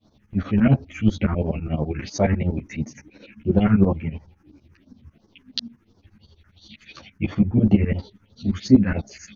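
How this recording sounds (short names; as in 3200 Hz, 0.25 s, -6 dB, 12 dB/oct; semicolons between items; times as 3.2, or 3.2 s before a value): phasing stages 4, 2.9 Hz, lowest notch 610–2600 Hz; tremolo saw up 12 Hz, depth 95%; a shimmering, thickened sound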